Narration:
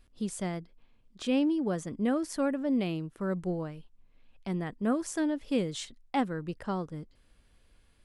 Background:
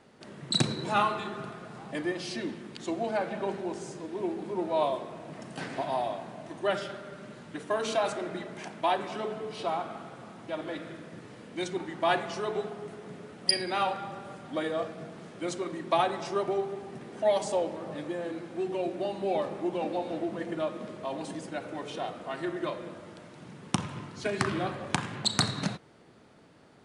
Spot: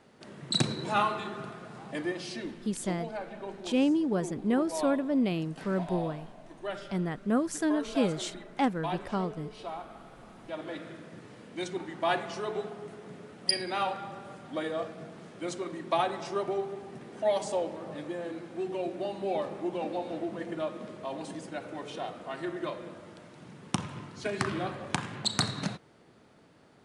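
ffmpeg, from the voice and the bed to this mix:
ffmpeg -i stem1.wav -i stem2.wav -filter_complex "[0:a]adelay=2450,volume=1.5dB[link_01];[1:a]volume=5dB,afade=type=out:start_time=2.02:duration=0.94:silence=0.446684,afade=type=in:start_time=9.89:duration=0.88:silence=0.501187[link_02];[link_01][link_02]amix=inputs=2:normalize=0" out.wav

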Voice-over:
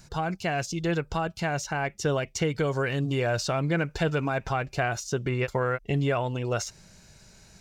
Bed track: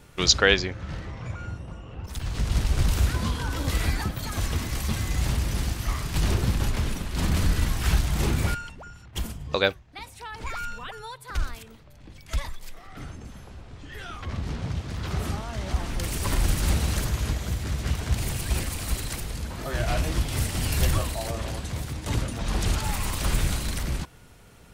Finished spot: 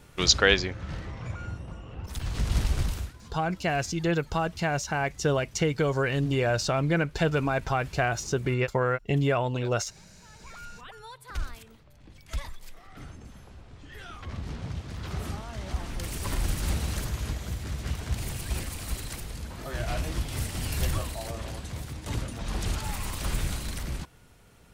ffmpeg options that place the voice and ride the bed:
ffmpeg -i stem1.wav -i stem2.wav -filter_complex "[0:a]adelay=3200,volume=1dB[link_01];[1:a]volume=16dB,afade=type=out:start_time=2.65:duration=0.48:silence=0.0891251,afade=type=in:start_time=10.19:duration=1.02:silence=0.133352[link_02];[link_01][link_02]amix=inputs=2:normalize=0" out.wav

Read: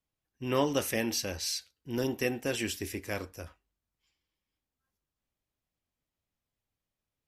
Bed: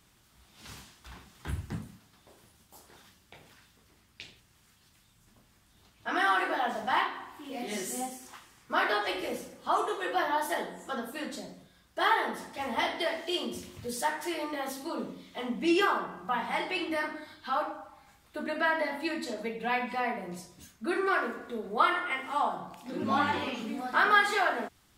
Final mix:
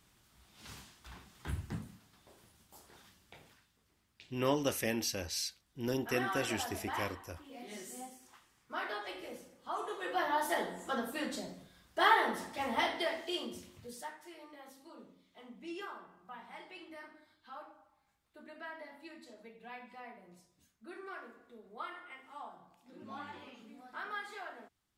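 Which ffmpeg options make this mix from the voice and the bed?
ffmpeg -i stem1.wav -i stem2.wav -filter_complex "[0:a]adelay=3900,volume=-3.5dB[link_01];[1:a]volume=7.5dB,afade=type=out:start_time=3.41:duration=0.25:silence=0.398107,afade=type=in:start_time=9.73:duration=0.97:silence=0.281838,afade=type=out:start_time=12.41:duration=1.79:silence=0.125893[link_02];[link_01][link_02]amix=inputs=2:normalize=0" out.wav

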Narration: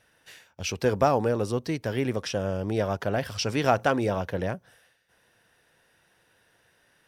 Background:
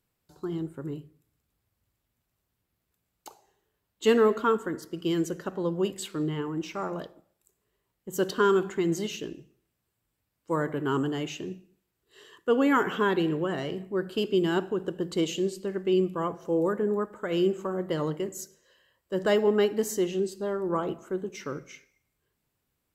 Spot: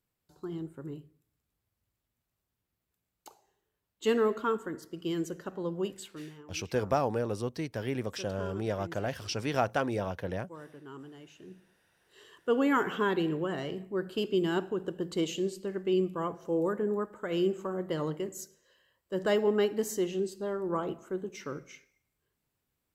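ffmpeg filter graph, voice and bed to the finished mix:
ffmpeg -i stem1.wav -i stem2.wav -filter_complex "[0:a]adelay=5900,volume=-6dB[link_01];[1:a]volume=10dB,afade=type=out:start_time=5.85:duration=0.47:silence=0.211349,afade=type=in:start_time=11.36:duration=0.53:silence=0.16788[link_02];[link_01][link_02]amix=inputs=2:normalize=0" out.wav

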